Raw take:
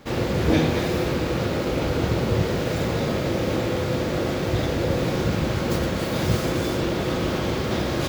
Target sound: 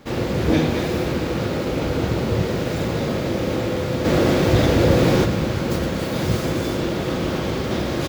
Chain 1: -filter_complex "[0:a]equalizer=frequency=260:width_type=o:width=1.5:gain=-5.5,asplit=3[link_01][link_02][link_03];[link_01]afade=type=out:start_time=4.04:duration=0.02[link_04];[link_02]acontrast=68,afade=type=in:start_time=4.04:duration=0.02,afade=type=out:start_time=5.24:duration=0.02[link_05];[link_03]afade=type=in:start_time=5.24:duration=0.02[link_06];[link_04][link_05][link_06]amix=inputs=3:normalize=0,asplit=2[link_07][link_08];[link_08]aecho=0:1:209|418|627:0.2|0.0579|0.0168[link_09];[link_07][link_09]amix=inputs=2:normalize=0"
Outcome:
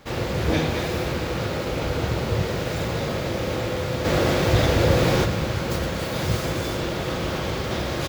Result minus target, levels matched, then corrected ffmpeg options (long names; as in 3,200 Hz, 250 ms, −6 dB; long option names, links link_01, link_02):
250 Hz band −3.0 dB
-filter_complex "[0:a]equalizer=frequency=260:width_type=o:width=1.5:gain=2,asplit=3[link_01][link_02][link_03];[link_01]afade=type=out:start_time=4.04:duration=0.02[link_04];[link_02]acontrast=68,afade=type=in:start_time=4.04:duration=0.02,afade=type=out:start_time=5.24:duration=0.02[link_05];[link_03]afade=type=in:start_time=5.24:duration=0.02[link_06];[link_04][link_05][link_06]amix=inputs=3:normalize=0,asplit=2[link_07][link_08];[link_08]aecho=0:1:209|418|627:0.2|0.0579|0.0168[link_09];[link_07][link_09]amix=inputs=2:normalize=0"